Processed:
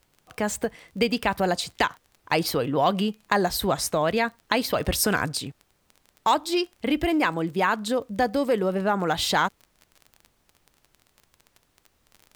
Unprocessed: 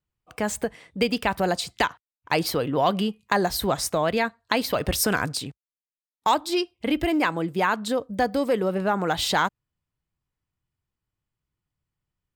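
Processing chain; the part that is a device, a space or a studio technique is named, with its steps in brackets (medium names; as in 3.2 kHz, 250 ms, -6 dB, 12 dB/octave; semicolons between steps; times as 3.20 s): vinyl LP (wow and flutter 19 cents; crackle 26 per s -35 dBFS; pink noise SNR 41 dB)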